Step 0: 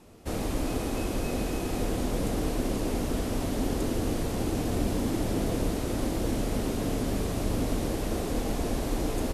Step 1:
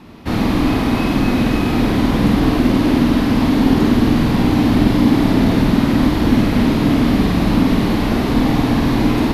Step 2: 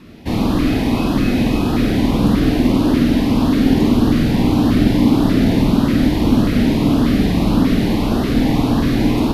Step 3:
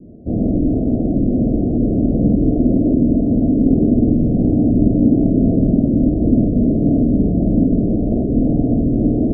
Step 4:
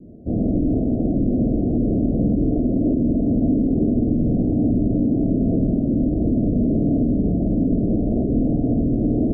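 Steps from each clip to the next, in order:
graphic EQ 125/250/500/1000/2000/4000/8000 Hz +8/+10/-4/+8/+7/+8/-11 dB; on a send: flutter echo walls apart 8.6 m, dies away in 0.64 s; on the sum: trim +6 dB
LFO notch saw up 1.7 Hz 780–2400 Hz
steep low-pass 690 Hz 96 dB/octave; reverse; upward compressor, threshold -27 dBFS; reverse
peak limiter -8.5 dBFS, peak gain reduction 6.5 dB; trim -2.5 dB

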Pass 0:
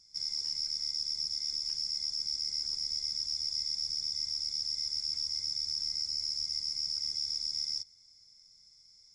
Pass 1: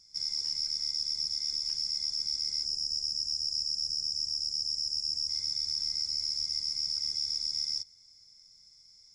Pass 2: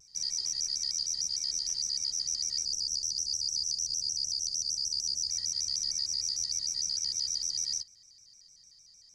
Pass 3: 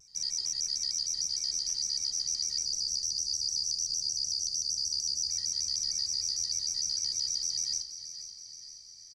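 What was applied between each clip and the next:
time-frequency box 2.64–5.29 s, 830–4700 Hz -16 dB; trim +2 dB
vibrato with a chosen wave square 6.6 Hz, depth 160 cents
feedback delay 478 ms, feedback 59%, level -12 dB

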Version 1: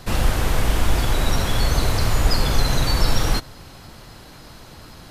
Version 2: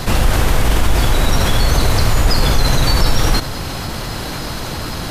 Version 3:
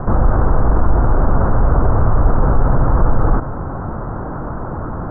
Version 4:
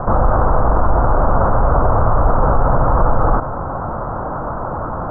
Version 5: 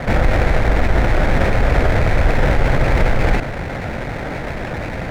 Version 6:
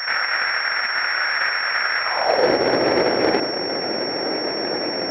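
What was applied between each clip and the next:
level flattener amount 50%; trim +2.5 dB
steep low-pass 1.4 kHz 48 dB/octave; trim +1 dB
high-order bell 840 Hz +8 dB; trim -2 dB
comb filter that takes the minimum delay 0.44 ms
high-pass sweep 1.5 kHz -> 350 Hz, 1.99–2.51 s; de-hum 47.5 Hz, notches 36; class-D stage that switches slowly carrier 5.5 kHz

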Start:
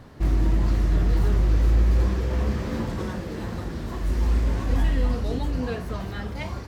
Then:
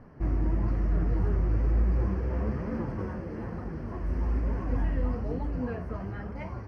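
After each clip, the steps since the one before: flange 1.1 Hz, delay 3.8 ms, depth 9.8 ms, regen +53%; boxcar filter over 12 samples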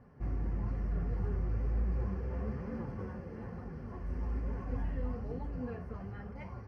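comb of notches 320 Hz; trim -6.5 dB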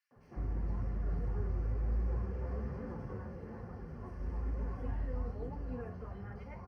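three bands offset in time highs, mids, lows 110/160 ms, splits 200/2500 Hz; trim -1 dB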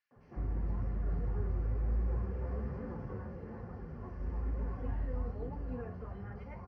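distance through air 120 m; trim +1 dB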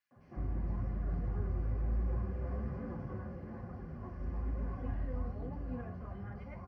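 self-modulated delay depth 0.082 ms; comb of notches 450 Hz; trim +1 dB

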